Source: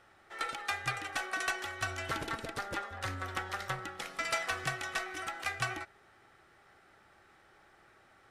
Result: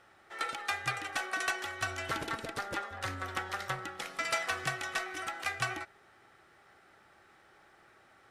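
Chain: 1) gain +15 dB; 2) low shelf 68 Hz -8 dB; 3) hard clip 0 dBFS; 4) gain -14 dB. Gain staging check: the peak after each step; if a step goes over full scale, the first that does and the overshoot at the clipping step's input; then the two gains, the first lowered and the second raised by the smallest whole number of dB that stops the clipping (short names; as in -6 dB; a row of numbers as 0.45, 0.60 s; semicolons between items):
-5.5, -5.5, -5.5, -19.5 dBFS; no overload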